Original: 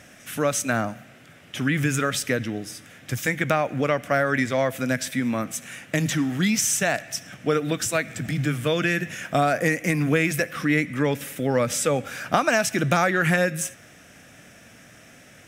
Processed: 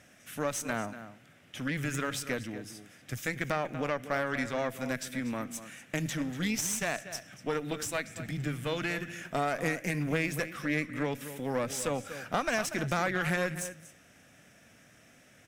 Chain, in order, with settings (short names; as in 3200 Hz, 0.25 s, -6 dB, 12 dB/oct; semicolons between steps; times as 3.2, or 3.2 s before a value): outdoor echo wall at 41 m, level -12 dB; tube stage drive 14 dB, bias 0.7; gain -6 dB